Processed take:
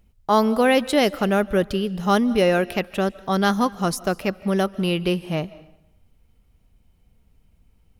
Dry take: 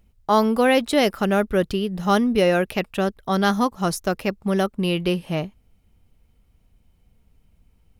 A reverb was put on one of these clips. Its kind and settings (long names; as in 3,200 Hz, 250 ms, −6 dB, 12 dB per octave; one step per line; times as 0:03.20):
comb and all-pass reverb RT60 0.77 s, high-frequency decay 0.85×, pre-delay 115 ms, DRR 19 dB